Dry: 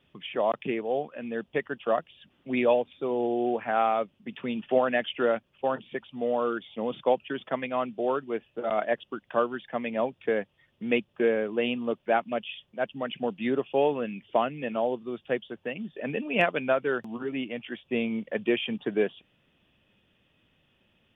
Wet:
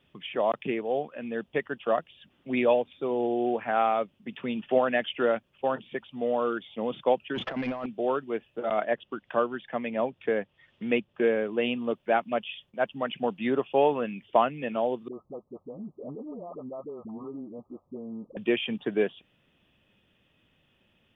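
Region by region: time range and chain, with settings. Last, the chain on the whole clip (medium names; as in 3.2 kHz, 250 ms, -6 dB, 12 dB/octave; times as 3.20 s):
7.35–7.86 s: compressor with a negative ratio -40 dBFS + waveshaping leveller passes 3 + distance through air 240 m
8.80–11.22 s: distance through air 120 m + tape noise reduction on one side only encoder only
12.32–14.51 s: gate with hold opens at -48 dBFS, closes at -53 dBFS + dynamic bell 1 kHz, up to +5 dB, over -39 dBFS, Q 1.2
15.08–18.37 s: compression 5:1, threshold -35 dBFS + brick-wall FIR low-pass 1.3 kHz + phase dispersion highs, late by 62 ms, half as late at 540 Hz
whole clip: none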